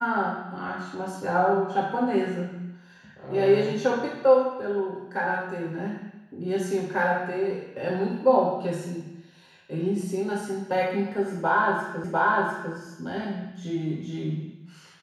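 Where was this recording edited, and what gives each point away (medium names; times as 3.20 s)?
12.04 s: repeat of the last 0.7 s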